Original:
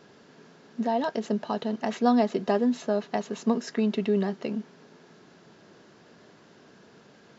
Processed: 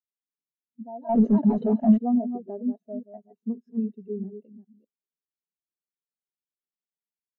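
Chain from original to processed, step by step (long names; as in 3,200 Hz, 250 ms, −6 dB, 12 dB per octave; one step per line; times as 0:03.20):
delay that plays each chunk backwards 202 ms, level −4 dB
0:01.09–0:01.98: leveller curve on the samples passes 5
every bin expanded away from the loudest bin 2.5 to 1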